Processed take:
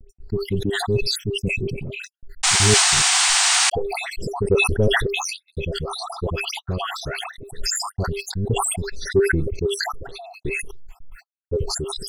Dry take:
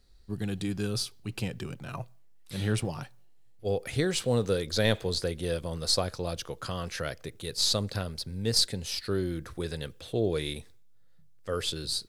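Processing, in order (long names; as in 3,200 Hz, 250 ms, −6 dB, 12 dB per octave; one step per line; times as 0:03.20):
time-frequency cells dropped at random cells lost 73%
spectral tilt −3.5 dB per octave
hollow resonant body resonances 400/2,600 Hz, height 16 dB, ringing for 95 ms
all-pass dispersion highs, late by 97 ms, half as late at 1,300 Hz
sound drawn into the spectrogram noise, 0:02.43–0:03.70, 670–9,400 Hz −17 dBFS
noise gate −50 dBFS, range −51 dB
in parallel at −7 dB: soft clipping −12.5 dBFS, distortion −14 dB
on the sum: level that may fall only so fast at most 32 dB per second
level −3 dB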